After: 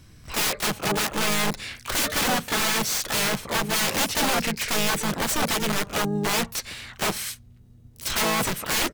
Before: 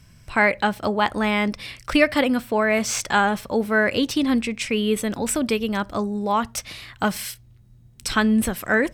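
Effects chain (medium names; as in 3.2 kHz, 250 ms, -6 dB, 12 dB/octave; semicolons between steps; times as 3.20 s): integer overflow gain 18.5 dB; harmony voices -5 st -4 dB, +12 st -7 dB; trim -1.5 dB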